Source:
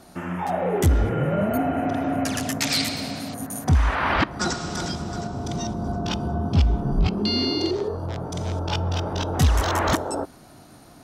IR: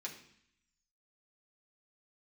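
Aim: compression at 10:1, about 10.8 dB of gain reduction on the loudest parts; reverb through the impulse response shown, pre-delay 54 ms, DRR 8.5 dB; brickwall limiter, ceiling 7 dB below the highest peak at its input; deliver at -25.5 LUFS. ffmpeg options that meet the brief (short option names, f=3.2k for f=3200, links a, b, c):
-filter_complex "[0:a]acompressor=threshold=-25dB:ratio=10,alimiter=limit=-22dB:level=0:latency=1,asplit=2[a][b];[1:a]atrim=start_sample=2205,adelay=54[c];[b][c]afir=irnorm=-1:irlink=0,volume=-7dB[d];[a][d]amix=inputs=2:normalize=0,volume=5.5dB"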